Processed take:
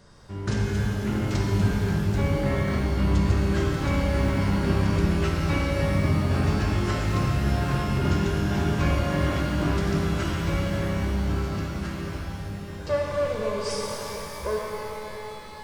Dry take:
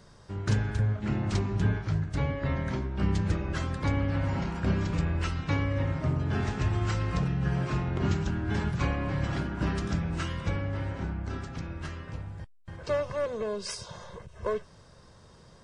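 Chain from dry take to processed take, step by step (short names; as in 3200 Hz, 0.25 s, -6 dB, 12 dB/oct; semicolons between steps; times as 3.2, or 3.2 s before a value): shimmer reverb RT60 3.6 s, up +12 st, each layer -8 dB, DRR -2.5 dB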